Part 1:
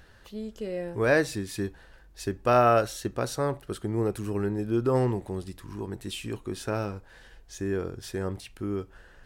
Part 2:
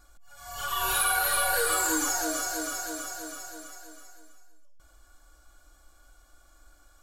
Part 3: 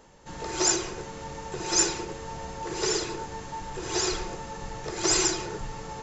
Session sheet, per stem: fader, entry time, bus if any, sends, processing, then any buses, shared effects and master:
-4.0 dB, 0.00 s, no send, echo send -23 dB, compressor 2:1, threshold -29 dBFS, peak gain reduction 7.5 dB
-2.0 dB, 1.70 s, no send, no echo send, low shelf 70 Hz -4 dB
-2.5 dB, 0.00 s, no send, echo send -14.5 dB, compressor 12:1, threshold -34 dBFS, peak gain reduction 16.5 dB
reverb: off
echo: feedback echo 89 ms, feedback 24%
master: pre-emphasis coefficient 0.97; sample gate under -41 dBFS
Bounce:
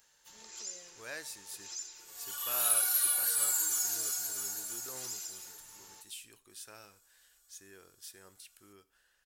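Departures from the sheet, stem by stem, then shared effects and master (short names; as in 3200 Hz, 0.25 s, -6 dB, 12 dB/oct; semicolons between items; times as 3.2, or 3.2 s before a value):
stem 1: missing compressor 2:1, threshold -29 dBFS, peak gain reduction 7.5 dB; master: missing sample gate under -41 dBFS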